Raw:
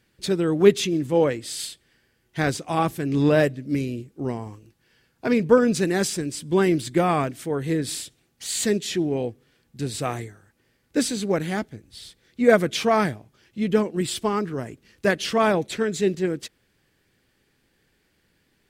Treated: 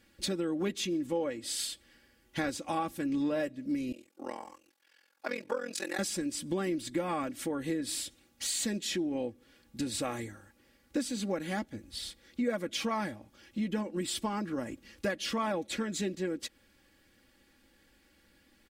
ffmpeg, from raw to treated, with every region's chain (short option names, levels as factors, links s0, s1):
-filter_complex "[0:a]asettb=1/sr,asplit=3[s0][s1][s2];[s0]atrim=end=3.924[s3];[s1]atrim=start=3.92:end=5.99,asetpts=PTS-STARTPTS,afade=t=in:d=0.004:c=qsin,afade=t=out:st=2.066:d=0.004:c=qsin,highpass=620,tremolo=f=43:d=1[s4];[s2]atrim=start=5.986[s5];[s3][s4]acrossfade=d=0.004:c1=hsin:c2=qsin[s6];[s6][s5]acrossfade=d=0.004:c1=qsin:c2=hsin,aecho=1:1:3.6:0.71,acompressor=threshold=0.0251:ratio=4"